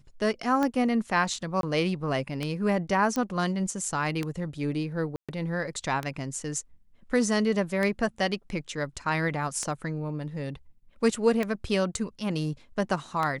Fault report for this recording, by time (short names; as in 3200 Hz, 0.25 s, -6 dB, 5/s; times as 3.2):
tick 33 1/3 rpm -15 dBFS
1.61–1.63 gap 22 ms
3.16 pop -17 dBFS
5.16–5.29 gap 0.126 s